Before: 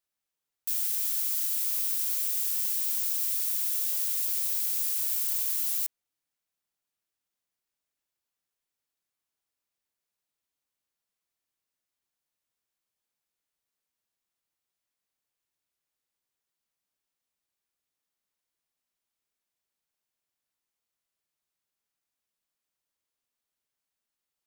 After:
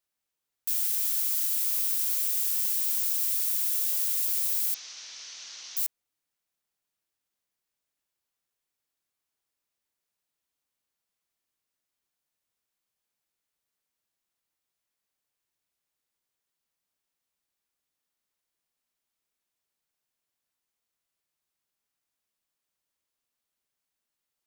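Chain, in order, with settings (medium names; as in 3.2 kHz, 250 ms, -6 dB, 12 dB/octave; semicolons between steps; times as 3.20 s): 4.74–5.77 s: Chebyshev low-pass 6.1 kHz, order 5; trim +1.5 dB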